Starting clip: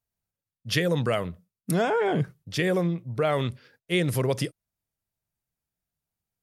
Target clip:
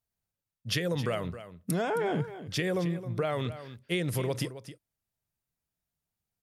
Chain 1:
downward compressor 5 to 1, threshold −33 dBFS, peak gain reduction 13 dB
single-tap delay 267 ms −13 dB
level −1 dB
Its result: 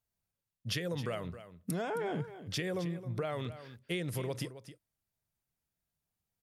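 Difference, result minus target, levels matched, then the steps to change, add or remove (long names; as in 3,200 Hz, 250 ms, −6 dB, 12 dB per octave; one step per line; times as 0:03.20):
downward compressor: peak gain reduction +6 dB
change: downward compressor 5 to 1, threshold −25.5 dBFS, peak gain reduction 7 dB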